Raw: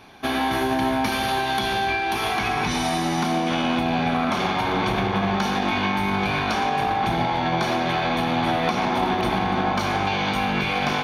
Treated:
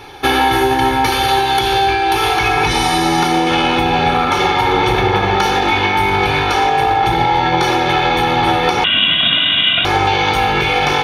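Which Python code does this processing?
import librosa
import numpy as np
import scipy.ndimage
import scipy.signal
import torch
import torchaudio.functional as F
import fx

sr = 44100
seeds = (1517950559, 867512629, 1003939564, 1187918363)

y = x + 0.86 * np.pad(x, (int(2.3 * sr / 1000.0), 0))[:len(x)]
y = fx.rider(y, sr, range_db=10, speed_s=0.5)
y = fx.freq_invert(y, sr, carrier_hz=3700, at=(8.84, 9.85))
y = F.gain(torch.from_numpy(y), 7.0).numpy()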